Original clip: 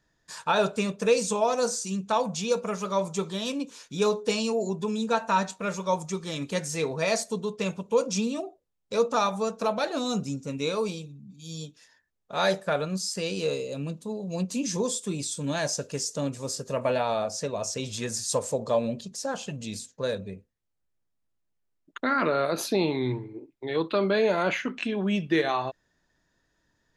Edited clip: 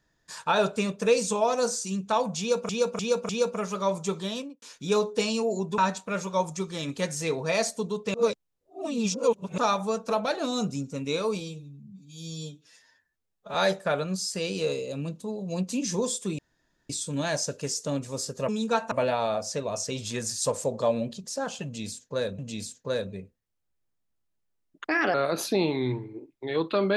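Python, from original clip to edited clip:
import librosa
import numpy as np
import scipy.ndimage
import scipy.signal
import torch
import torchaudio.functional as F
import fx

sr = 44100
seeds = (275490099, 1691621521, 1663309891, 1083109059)

y = fx.studio_fade_out(x, sr, start_s=3.37, length_s=0.35)
y = fx.edit(y, sr, fx.repeat(start_s=2.39, length_s=0.3, count=4),
    fx.move(start_s=4.88, length_s=0.43, to_s=16.79),
    fx.reverse_span(start_s=7.67, length_s=1.44),
    fx.stretch_span(start_s=10.93, length_s=1.43, factor=1.5),
    fx.insert_room_tone(at_s=15.2, length_s=0.51),
    fx.repeat(start_s=19.52, length_s=0.74, count=2),
    fx.speed_span(start_s=21.98, length_s=0.36, speed=1.22), tone=tone)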